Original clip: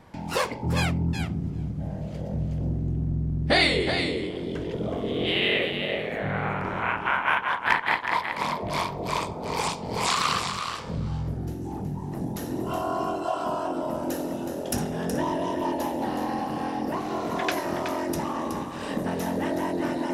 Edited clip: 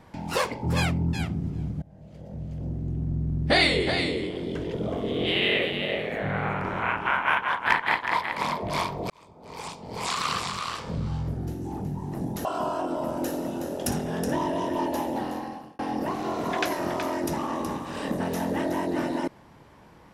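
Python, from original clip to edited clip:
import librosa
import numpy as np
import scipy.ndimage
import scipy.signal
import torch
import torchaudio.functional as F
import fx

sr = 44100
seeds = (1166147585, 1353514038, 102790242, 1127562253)

y = fx.edit(x, sr, fx.fade_in_from(start_s=1.82, length_s=1.5, floor_db=-23.5),
    fx.fade_in_span(start_s=9.1, length_s=1.7),
    fx.cut(start_s=12.45, length_s=0.86),
    fx.fade_out_span(start_s=15.96, length_s=0.69), tone=tone)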